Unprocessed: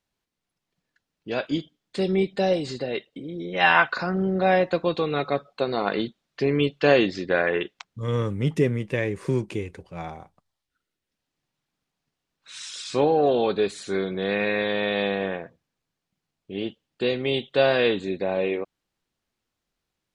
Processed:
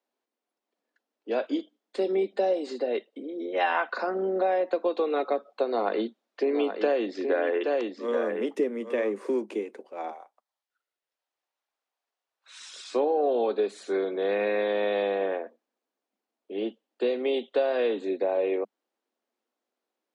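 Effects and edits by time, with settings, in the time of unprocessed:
5.67–9.17 echo 0.823 s -8.5 dB
10.11–12.59 HPF 750 Hz
whole clip: steep high-pass 210 Hz 96 dB/oct; bell 570 Hz +11.5 dB 2.4 oct; compressor 6:1, threshold -13 dBFS; gain -8.5 dB

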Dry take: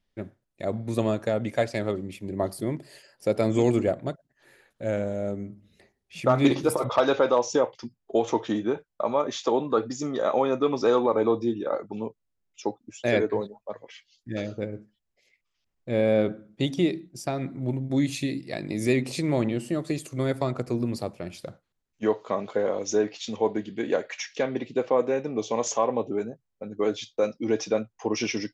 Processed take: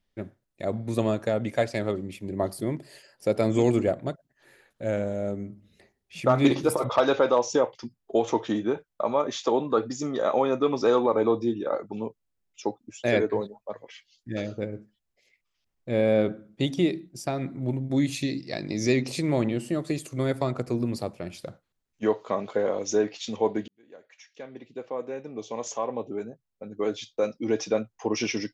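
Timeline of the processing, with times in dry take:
18.22–19.08 EQ curve 3300 Hz 0 dB, 5900 Hz +12 dB, 8700 Hz -13 dB
23.68–27.81 fade in

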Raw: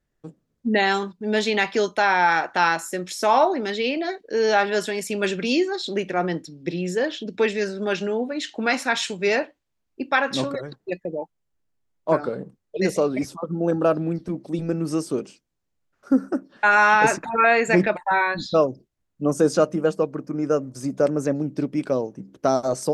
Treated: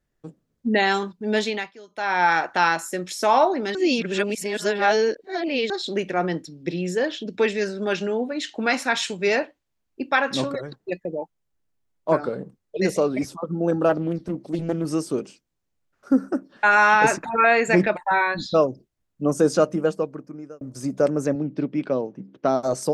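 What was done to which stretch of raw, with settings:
1.37–2.25 dip -23 dB, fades 0.36 s
3.75–5.7 reverse
13.89–14.85 Doppler distortion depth 0.29 ms
19.79–20.61 fade out
21.35–22.63 Chebyshev band-pass 150–3300 Hz

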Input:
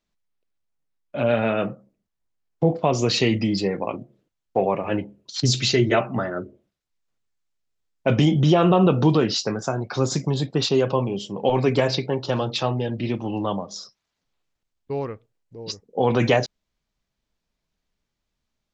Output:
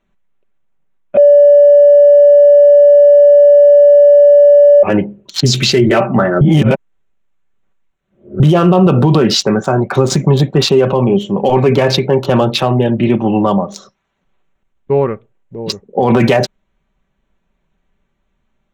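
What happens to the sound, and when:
1.17–4.83 bleep 578 Hz -8 dBFS
6.41–8.4 reverse
whole clip: Wiener smoothing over 9 samples; comb 5.2 ms, depth 40%; maximiser +15 dB; gain -1 dB

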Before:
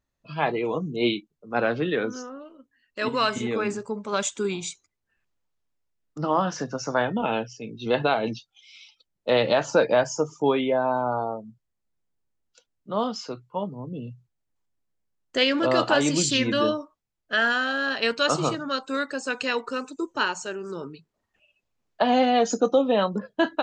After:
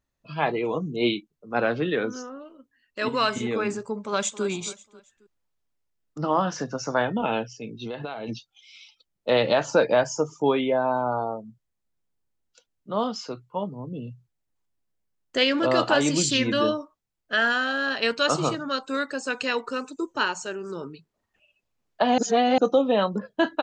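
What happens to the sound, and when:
3.97–4.45 echo throw 0.27 s, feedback 35%, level -14 dB
7.72–8.29 compressor, threshold -30 dBFS
22.18–22.58 reverse

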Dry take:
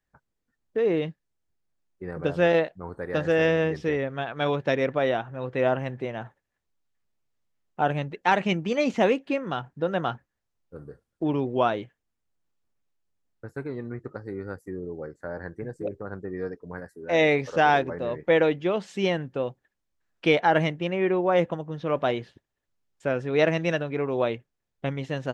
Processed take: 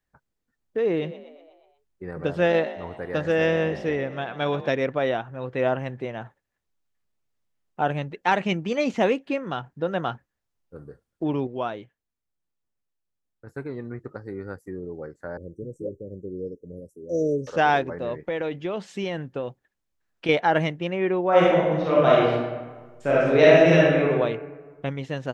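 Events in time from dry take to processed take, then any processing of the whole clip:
0.87–4.69 frequency-shifting echo 0.121 s, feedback 57%, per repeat +44 Hz, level -15 dB
11.47–13.47 gain -6 dB
15.37–17.47 Chebyshev band-stop 560–5800 Hz, order 5
18.27–20.29 compressor, threshold -24 dBFS
21.29–24.03 reverb throw, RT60 1.4 s, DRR -7 dB

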